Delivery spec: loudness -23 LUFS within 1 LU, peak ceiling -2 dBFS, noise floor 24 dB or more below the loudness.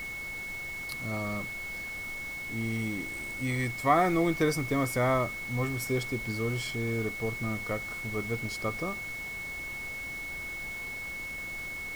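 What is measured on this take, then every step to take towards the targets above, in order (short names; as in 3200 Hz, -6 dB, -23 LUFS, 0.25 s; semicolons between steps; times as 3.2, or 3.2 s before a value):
steady tone 2200 Hz; tone level -36 dBFS; noise floor -38 dBFS; noise floor target -56 dBFS; loudness -31.5 LUFS; peak -11.0 dBFS; loudness target -23.0 LUFS
-> notch 2200 Hz, Q 30; denoiser 18 dB, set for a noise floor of -38 dBFS; gain +8.5 dB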